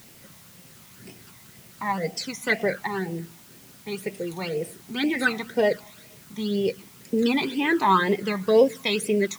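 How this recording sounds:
phaser sweep stages 12, 2 Hz, lowest notch 480–1,400 Hz
a quantiser's noise floor 10 bits, dither triangular

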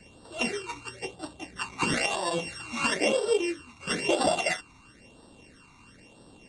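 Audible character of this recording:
a buzz of ramps at a fixed pitch in blocks of 16 samples
phaser sweep stages 12, 1 Hz, lowest notch 530–2,200 Hz
MP2

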